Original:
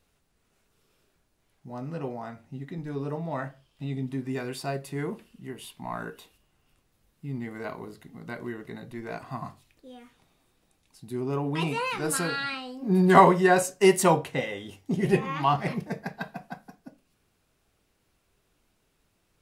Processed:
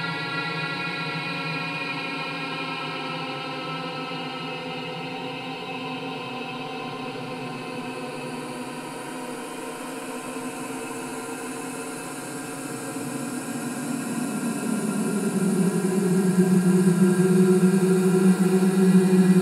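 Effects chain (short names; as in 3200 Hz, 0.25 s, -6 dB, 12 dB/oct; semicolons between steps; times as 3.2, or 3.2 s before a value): diffused feedback echo 0.784 s, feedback 46%, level -8 dB; Paulstretch 38×, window 0.10 s, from 12.48; whine 730 Hz -47 dBFS; gain +2 dB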